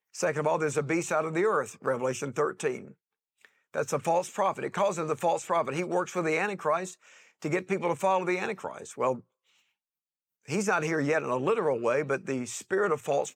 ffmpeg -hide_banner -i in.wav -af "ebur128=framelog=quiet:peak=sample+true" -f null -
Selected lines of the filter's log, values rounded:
Integrated loudness:
  I:         -29.0 LUFS
  Threshold: -39.6 LUFS
Loudness range:
  LRA:         2.8 LU
  Threshold: -50.2 LUFS
  LRA low:   -31.6 LUFS
  LRA high:  -28.9 LUFS
Sample peak:
  Peak:      -14.5 dBFS
True peak:
  Peak:      -14.5 dBFS